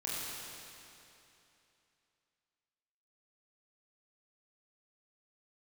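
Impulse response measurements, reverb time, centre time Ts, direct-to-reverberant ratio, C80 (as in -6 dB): 2.9 s, 0.194 s, -7.5 dB, -2.0 dB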